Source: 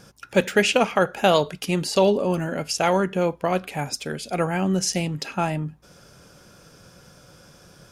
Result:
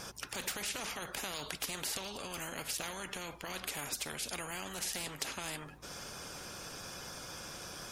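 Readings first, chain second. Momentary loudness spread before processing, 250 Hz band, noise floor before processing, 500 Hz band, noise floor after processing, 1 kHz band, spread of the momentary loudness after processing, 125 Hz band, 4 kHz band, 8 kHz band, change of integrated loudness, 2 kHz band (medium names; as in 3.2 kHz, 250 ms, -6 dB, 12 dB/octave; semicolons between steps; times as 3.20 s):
9 LU, -23.0 dB, -52 dBFS, -24.5 dB, -50 dBFS, -18.5 dB, 7 LU, -22.5 dB, -10.0 dB, -6.5 dB, -17.0 dB, -13.5 dB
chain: coarse spectral quantiser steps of 15 dB; peak limiter -17.5 dBFS, peak gain reduction 11.5 dB; spectrum-flattening compressor 4:1; trim +1.5 dB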